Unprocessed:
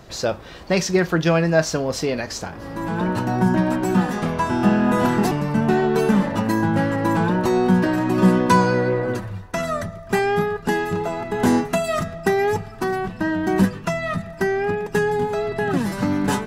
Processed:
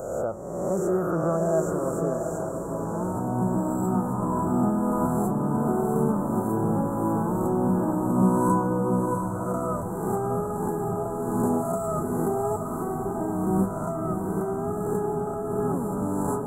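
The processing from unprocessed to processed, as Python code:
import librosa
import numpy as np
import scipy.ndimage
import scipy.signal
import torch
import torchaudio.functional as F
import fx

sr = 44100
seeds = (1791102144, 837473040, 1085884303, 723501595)

y = fx.spec_swells(x, sr, rise_s=1.49)
y = scipy.signal.sosfilt(scipy.signal.cheby1(4, 1.0, [1300.0, 7500.0], 'bandstop', fs=sr, output='sos'), y)
y = fx.echo_diffused(y, sr, ms=700, feedback_pct=46, wet_db=-5.0)
y = y * librosa.db_to_amplitude(-8.5)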